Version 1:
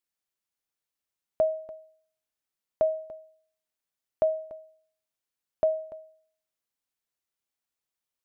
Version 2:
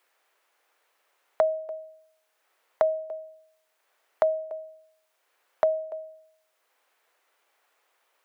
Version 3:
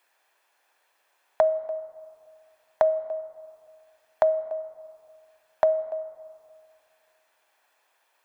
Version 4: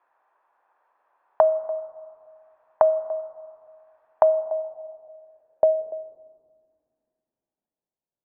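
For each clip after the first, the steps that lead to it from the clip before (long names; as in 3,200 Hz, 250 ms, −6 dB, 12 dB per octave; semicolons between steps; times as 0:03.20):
high-pass filter 430 Hz 24 dB per octave; multiband upward and downward compressor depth 70%; level +5.5 dB
convolution reverb RT60 2.5 s, pre-delay 3 ms, DRR 14.5 dB; level +1 dB
low-pass filter sweep 1,100 Hz → 160 Hz, 0:04.11–0:08.02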